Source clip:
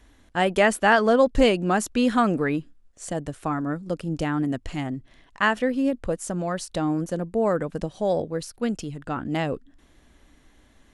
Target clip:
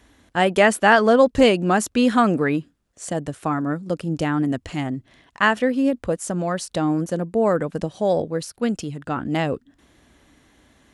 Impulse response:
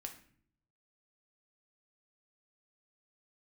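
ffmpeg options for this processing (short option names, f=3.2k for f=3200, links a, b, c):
-af "highpass=69,volume=3.5dB"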